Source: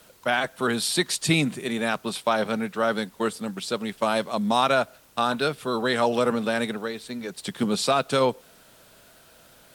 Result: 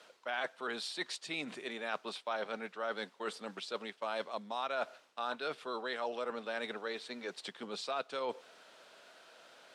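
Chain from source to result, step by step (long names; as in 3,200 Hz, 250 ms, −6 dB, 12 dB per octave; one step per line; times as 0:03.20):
reversed playback
downward compressor 6 to 1, threshold −31 dBFS, peak gain reduction 14.5 dB
reversed playback
band-pass filter 430–4,900 Hz
level −2 dB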